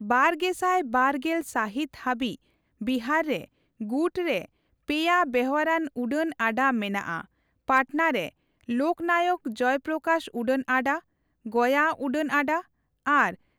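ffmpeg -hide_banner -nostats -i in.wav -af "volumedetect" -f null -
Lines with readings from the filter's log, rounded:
mean_volume: -26.5 dB
max_volume: -9.0 dB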